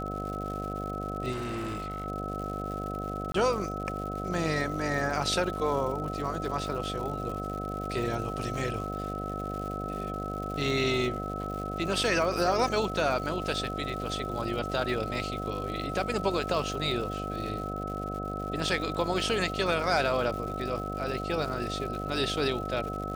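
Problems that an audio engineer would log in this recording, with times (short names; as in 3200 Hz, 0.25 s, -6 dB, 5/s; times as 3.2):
buzz 50 Hz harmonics 15 -36 dBFS
crackle 210/s -37 dBFS
tone 1300 Hz -36 dBFS
1.31–2.06 clipped -30.5 dBFS
3.32–3.34 gap 23 ms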